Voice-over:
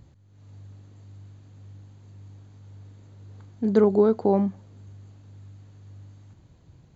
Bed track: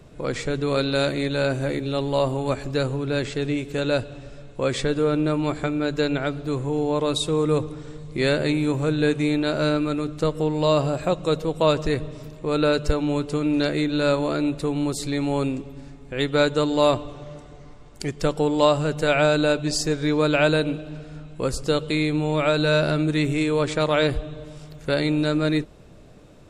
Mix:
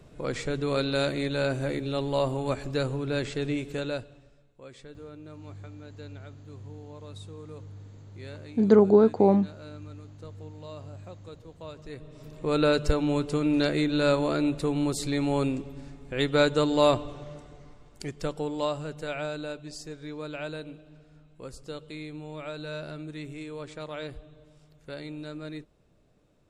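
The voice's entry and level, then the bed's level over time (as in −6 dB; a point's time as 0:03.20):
4.95 s, +1.0 dB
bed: 0:03.69 −4.5 dB
0:04.54 −23.5 dB
0:11.74 −23.5 dB
0:12.41 −2.5 dB
0:17.11 −2.5 dB
0:19.71 −17 dB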